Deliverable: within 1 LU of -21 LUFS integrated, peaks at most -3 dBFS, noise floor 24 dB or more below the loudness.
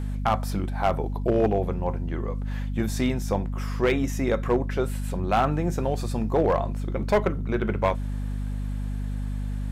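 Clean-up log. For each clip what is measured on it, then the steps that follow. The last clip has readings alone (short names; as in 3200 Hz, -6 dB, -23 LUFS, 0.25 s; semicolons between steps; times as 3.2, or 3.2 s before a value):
clipped 0.5%; flat tops at -14.5 dBFS; hum 50 Hz; harmonics up to 250 Hz; hum level -26 dBFS; loudness -26.5 LUFS; peak -14.5 dBFS; loudness target -21.0 LUFS
-> clip repair -14.5 dBFS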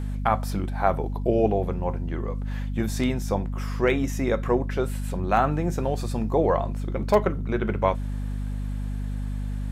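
clipped 0.0%; hum 50 Hz; harmonics up to 250 Hz; hum level -26 dBFS
-> de-hum 50 Hz, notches 5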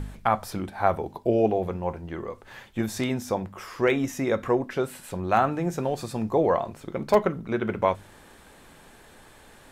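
hum none; loudness -26.5 LUFS; peak -6.5 dBFS; loudness target -21.0 LUFS
-> gain +5.5 dB; limiter -3 dBFS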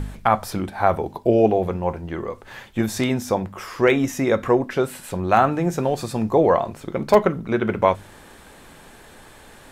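loudness -21.5 LUFS; peak -3.0 dBFS; noise floor -46 dBFS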